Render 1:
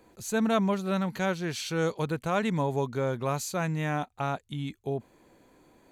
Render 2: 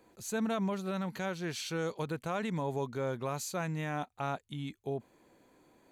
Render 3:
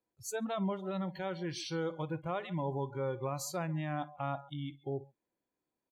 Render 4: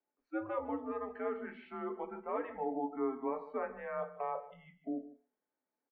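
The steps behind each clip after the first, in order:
bass shelf 81 Hz -7.5 dB; peak limiter -21 dBFS, peak gain reduction 6 dB; trim -4 dB
multi-tap echo 58/138 ms -18.5/-15 dB; dynamic bell 2 kHz, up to -5 dB, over -52 dBFS, Q 1.2; spectral noise reduction 26 dB
delay 152 ms -17 dB; reverberation RT60 0.35 s, pre-delay 3 ms, DRR 3.5 dB; mistuned SSB -120 Hz 450–2200 Hz

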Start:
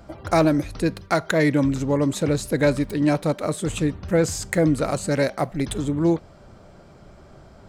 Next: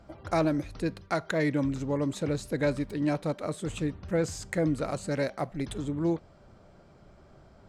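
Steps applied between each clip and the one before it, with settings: treble shelf 11 kHz -11.5 dB; trim -8 dB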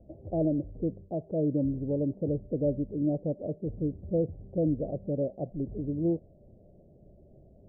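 steep low-pass 640 Hz 48 dB/octave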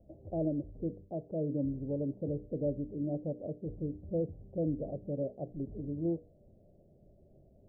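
hum notches 60/120/180/240/300/360/420/480 Hz; trim -5 dB

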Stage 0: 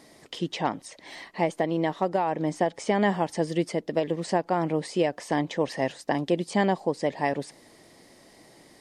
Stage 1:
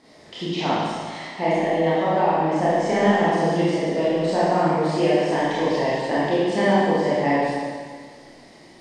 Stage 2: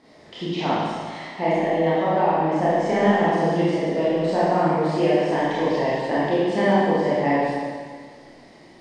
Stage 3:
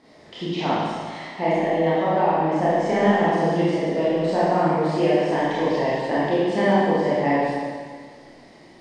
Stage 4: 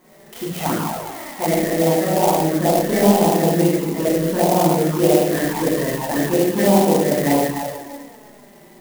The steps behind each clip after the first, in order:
low-pass 5.8 kHz 12 dB/octave; Schroeder reverb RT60 1.8 s, combs from 25 ms, DRR -10 dB; trim -3.5 dB
treble shelf 4.8 kHz -8 dB
no audible change
touch-sensitive flanger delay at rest 5.6 ms, full sweep at -15.5 dBFS; sampling jitter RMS 0.068 ms; trim +5.5 dB

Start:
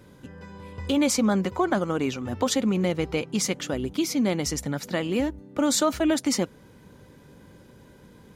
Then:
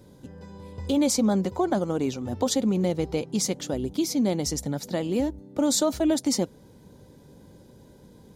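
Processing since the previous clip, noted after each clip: high-order bell 1.8 kHz -8.5 dB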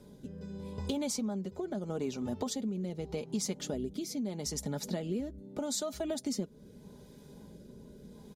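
comb 4.8 ms, depth 49%; compression 4:1, threshold -32 dBFS, peak gain reduction 14 dB; rotary cabinet horn 0.8 Hz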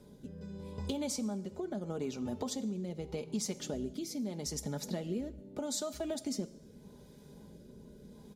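plate-style reverb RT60 0.95 s, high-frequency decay 0.95×, DRR 14 dB; trim -2 dB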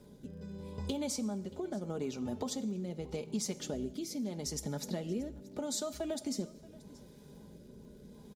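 crackle 74 per s -57 dBFS; delay 630 ms -21.5 dB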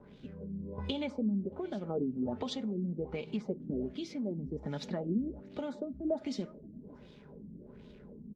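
crackle 550 per s -55 dBFS; LFO low-pass sine 1.3 Hz 220–3500 Hz

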